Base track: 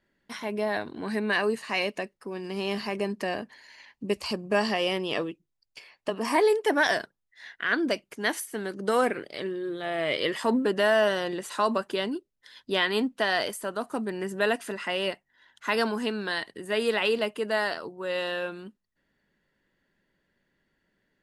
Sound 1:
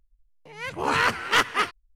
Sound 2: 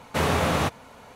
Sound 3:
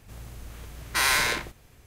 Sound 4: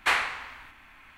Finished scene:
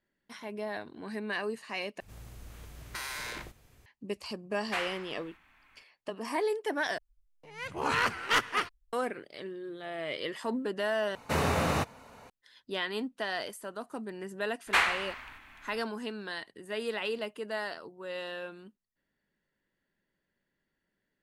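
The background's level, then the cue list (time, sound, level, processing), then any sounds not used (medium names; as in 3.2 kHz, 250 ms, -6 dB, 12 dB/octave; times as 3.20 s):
base track -8.5 dB
2.00 s: replace with 3 -6 dB + compression 12:1, threshold -28 dBFS
4.66 s: add 4 -10.5 dB
6.98 s: replace with 1 -6 dB
11.15 s: replace with 2 -5 dB + band-stop 3.3 kHz, Q 10
14.67 s: add 4 -1 dB + rattle on loud lows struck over -52 dBFS, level -32 dBFS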